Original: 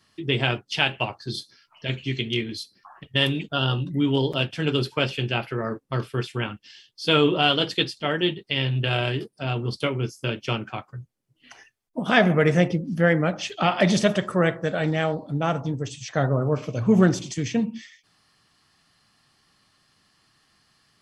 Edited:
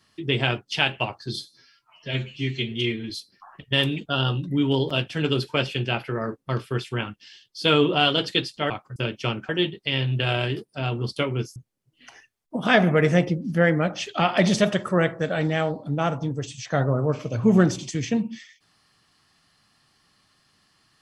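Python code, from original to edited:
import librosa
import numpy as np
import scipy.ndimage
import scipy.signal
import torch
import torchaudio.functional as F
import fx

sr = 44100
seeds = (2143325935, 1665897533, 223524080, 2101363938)

y = fx.edit(x, sr, fx.stretch_span(start_s=1.39, length_s=1.14, factor=1.5),
    fx.swap(start_s=8.13, length_s=2.07, other_s=10.73, other_length_s=0.26), tone=tone)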